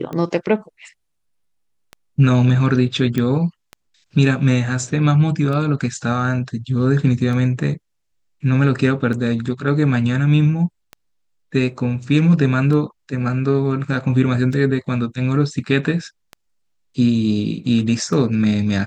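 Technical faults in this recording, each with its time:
scratch tick 33 1/3 rpm −17 dBFS
0:03.18: click −9 dBFS

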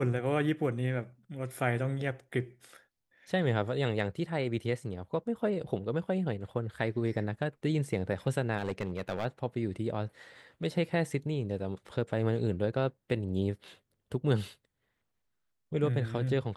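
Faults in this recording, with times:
0:08.58–0:09.26: clipping −27.5 dBFS

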